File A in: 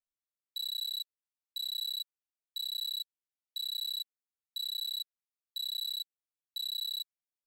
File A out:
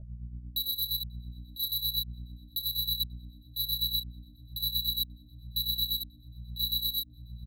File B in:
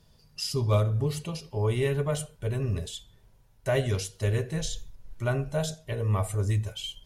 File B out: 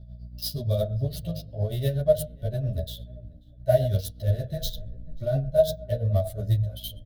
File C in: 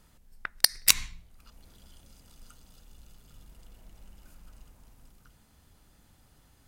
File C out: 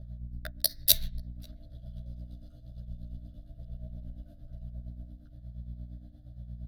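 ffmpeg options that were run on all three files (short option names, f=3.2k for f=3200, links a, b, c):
-filter_complex "[0:a]aeval=exprs='val(0)+0.00631*(sin(2*PI*60*n/s)+sin(2*PI*2*60*n/s)/2+sin(2*PI*3*60*n/s)/3+sin(2*PI*4*60*n/s)/4+sin(2*PI*5*60*n/s)/5)':c=same,equalizer=f=5.2k:t=o:w=0.21:g=-3,asplit=2[a][b];[b]acontrast=81,volume=-2dB[c];[a][c]amix=inputs=2:normalize=0,tremolo=f=8.6:d=0.67,adynamicsmooth=sensitivity=6:basefreq=2.3k,firequalizer=gain_entry='entry(130,0);entry(400,-15);entry(630,10);entry(900,-29);entry(1600,-10);entry(2400,-20);entry(3600,2);entry(5100,-1);entry(7300,-10);entry(12000,14)':delay=0.05:min_phase=1,asplit=2[d][e];[e]adelay=538,lowpass=f=1.6k:p=1,volume=-23.5dB,asplit=2[f][g];[g]adelay=538,lowpass=f=1.6k:p=1,volume=0.29[h];[f][h]amix=inputs=2:normalize=0[i];[d][i]amix=inputs=2:normalize=0,asplit=2[j][k];[k]adelay=11.8,afreqshift=-1.1[l];[j][l]amix=inputs=2:normalize=1"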